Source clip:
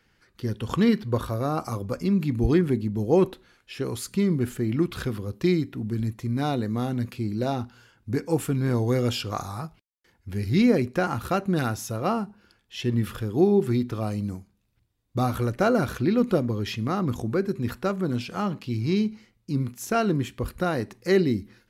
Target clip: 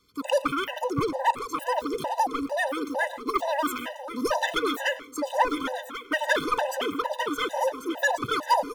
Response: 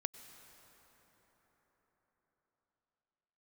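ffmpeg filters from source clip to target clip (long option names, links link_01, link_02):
-filter_complex "[0:a]equalizer=frequency=680:width_type=o:width=1.9:gain=6.5,asetrate=109368,aresample=44100,aeval=exprs='clip(val(0),-1,0.2)':channel_layout=same,aecho=1:1:1089|2178|3267|4356:0.355|0.142|0.0568|0.0227[link_01];[1:a]atrim=start_sample=2205,afade=type=out:start_time=0.21:duration=0.01,atrim=end_sample=9702[link_02];[link_01][link_02]afir=irnorm=-1:irlink=0,afftfilt=real='re*gt(sin(2*PI*2.2*pts/sr)*(1-2*mod(floor(b*sr/1024/510),2)),0)':imag='im*gt(sin(2*PI*2.2*pts/sr)*(1-2*mod(floor(b*sr/1024/510),2)),0)':win_size=1024:overlap=0.75"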